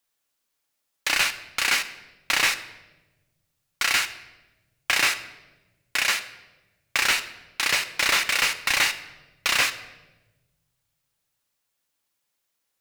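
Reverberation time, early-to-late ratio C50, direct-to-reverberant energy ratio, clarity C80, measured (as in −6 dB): 1.1 s, 13.0 dB, 8.5 dB, 15.5 dB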